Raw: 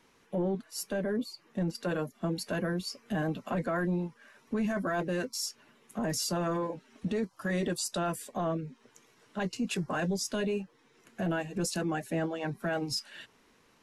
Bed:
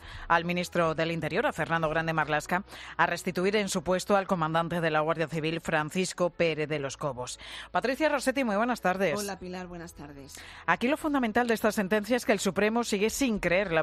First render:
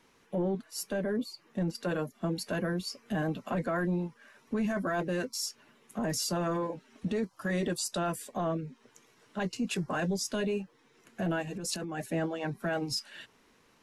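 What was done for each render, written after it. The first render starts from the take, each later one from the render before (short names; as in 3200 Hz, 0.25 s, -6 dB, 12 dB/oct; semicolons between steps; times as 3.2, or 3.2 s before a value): 11.47–12.06 negative-ratio compressor -36 dBFS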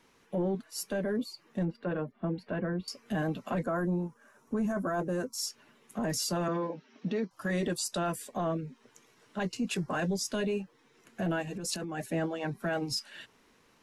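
1.65–2.88 air absorption 470 m; 3.63–5.38 band shelf 3000 Hz -11 dB; 6.48–7.31 Chebyshev band-pass 150–5800 Hz, order 4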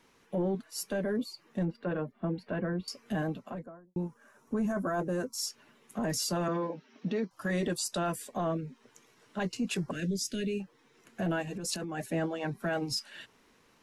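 3.04–3.96 studio fade out; 9.91–10.6 Butterworth band-stop 900 Hz, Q 0.58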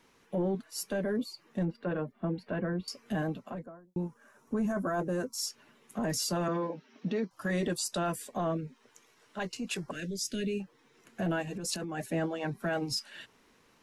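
8.67–10.24 bell 150 Hz -6.5 dB 2.7 oct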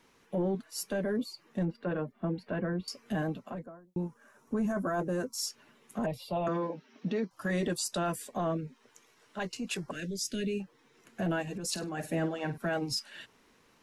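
6.06–6.47 EQ curve 130 Hz 0 dB, 270 Hz -10 dB, 490 Hz -1 dB, 710 Hz +5 dB, 1000 Hz -1 dB, 1600 Hz -23 dB, 2400 Hz 0 dB, 3700 Hz -1 dB, 6200 Hz -30 dB, 13000 Hz -13 dB; 11.71–12.58 flutter echo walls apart 8.6 m, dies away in 0.25 s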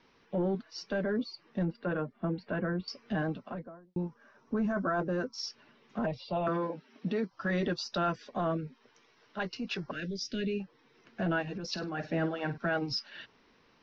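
steep low-pass 5700 Hz 72 dB/oct; dynamic EQ 1400 Hz, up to +6 dB, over -56 dBFS, Q 4.1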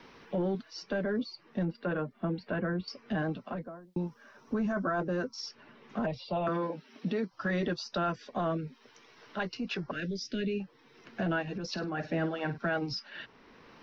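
three-band squash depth 40%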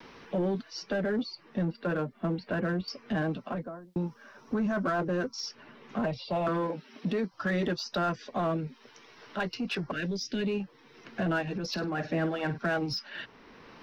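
vibrato 0.41 Hz 13 cents; in parallel at -5.5 dB: hard clip -35 dBFS, distortion -7 dB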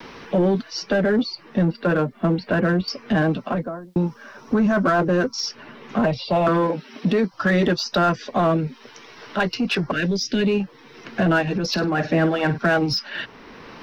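gain +10.5 dB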